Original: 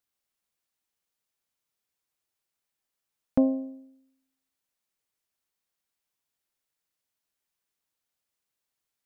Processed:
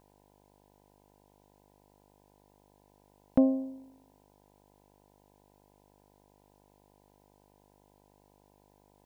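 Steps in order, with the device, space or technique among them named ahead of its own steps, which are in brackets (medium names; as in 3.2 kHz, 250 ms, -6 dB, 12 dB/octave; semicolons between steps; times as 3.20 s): video cassette with head-switching buzz (mains buzz 50 Hz, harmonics 20, -64 dBFS -1 dB/octave; white noise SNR 37 dB); trim -1 dB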